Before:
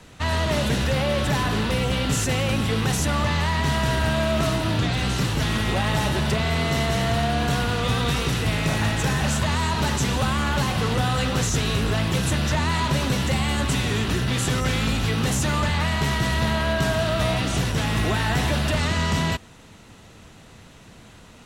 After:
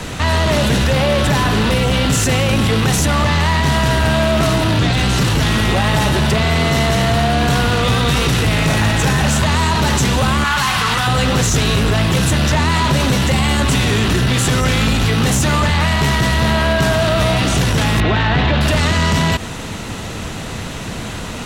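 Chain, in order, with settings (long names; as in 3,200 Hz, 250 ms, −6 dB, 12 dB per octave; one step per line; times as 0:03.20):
0:10.44–0:11.07: low shelf with overshoot 760 Hz −10.5 dB, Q 1.5
0:18.00–0:18.61: Butterworth low-pass 4,100 Hz
soft clipping −17 dBFS, distortion −19 dB
boost into a limiter +29 dB
level −8 dB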